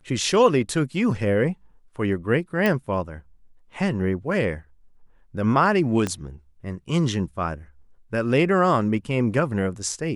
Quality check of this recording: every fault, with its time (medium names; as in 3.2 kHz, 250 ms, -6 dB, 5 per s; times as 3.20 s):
2.66 s: pop
6.07 s: pop -12 dBFS